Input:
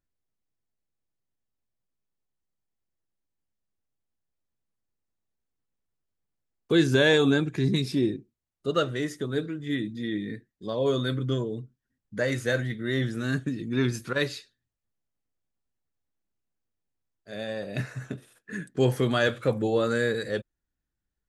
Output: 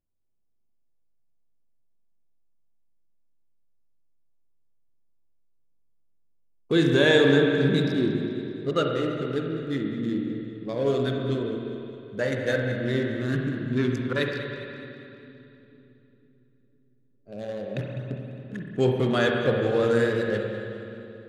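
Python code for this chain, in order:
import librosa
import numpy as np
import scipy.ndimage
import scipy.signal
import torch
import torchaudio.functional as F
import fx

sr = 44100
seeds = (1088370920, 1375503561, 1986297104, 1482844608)

y = fx.wiener(x, sr, points=25)
y = fx.echo_split(y, sr, split_hz=360.0, low_ms=505, high_ms=203, feedback_pct=52, wet_db=-15.5)
y = fx.rev_spring(y, sr, rt60_s=2.7, pass_ms=(43, 56), chirp_ms=30, drr_db=1.0)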